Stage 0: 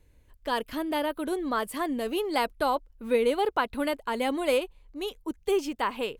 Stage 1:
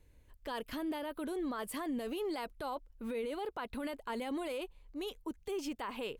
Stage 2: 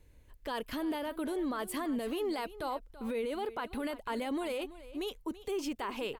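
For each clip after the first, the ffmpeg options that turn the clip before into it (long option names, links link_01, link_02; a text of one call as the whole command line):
ffmpeg -i in.wav -af "acompressor=threshold=-28dB:ratio=2,alimiter=level_in=4dB:limit=-24dB:level=0:latency=1:release=10,volume=-4dB,volume=-3dB" out.wav
ffmpeg -i in.wav -af "aecho=1:1:333:0.158,volume=3dB" out.wav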